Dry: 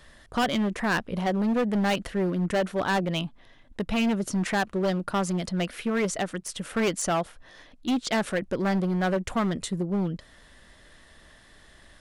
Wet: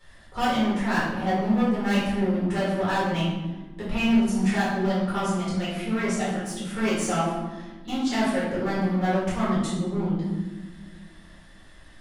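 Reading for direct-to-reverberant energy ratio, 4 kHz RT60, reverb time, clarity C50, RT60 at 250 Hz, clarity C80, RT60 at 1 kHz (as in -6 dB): -11.0 dB, 0.75 s, 1.4 s, 0.5 dB, 2.4 s, 3.5 dB, 1.2 s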